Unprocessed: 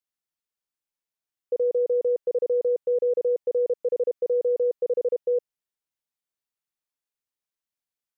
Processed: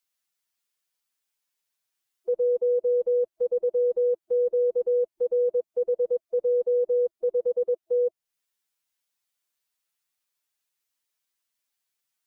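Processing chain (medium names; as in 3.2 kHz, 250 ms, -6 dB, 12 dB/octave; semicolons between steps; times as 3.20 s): time stretch by phase-locked vocoder 1.5×; tape noise reduction on one side only encoder only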